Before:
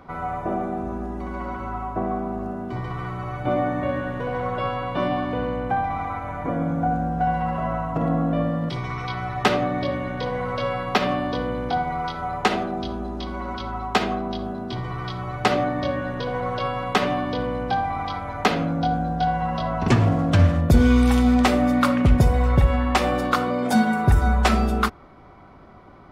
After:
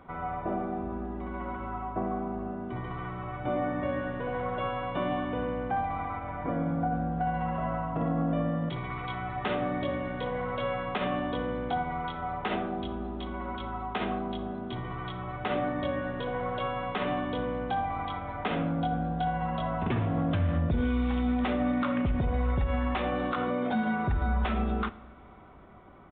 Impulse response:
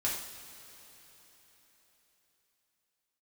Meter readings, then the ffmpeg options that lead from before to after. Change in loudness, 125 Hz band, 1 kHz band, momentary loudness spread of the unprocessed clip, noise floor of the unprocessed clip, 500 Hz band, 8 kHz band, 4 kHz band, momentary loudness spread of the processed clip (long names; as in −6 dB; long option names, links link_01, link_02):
−8.0 dB, −9.0 dB, −7.5 dB, 12 LU, −35 dBFS, −7.0 dB, below −40 dB, −10.5 dB, 8 LU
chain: -filter_complex "[0:a]alimiter=limit=-14.5dB:level=0:latency=1:release=50,asplit=2[link_01][link_02];[1:a]atrim=start_sample=2205,asetrate=41454,aresample=44100[link_03];[link_02][link_03]afir=irnorm=-1:irlink=0,volume=-19.5dB[link_04];[link_01][link_04]amix=inputs=2:normalize=0,aresample=8000,aresample=44100,volume=-6.5dB"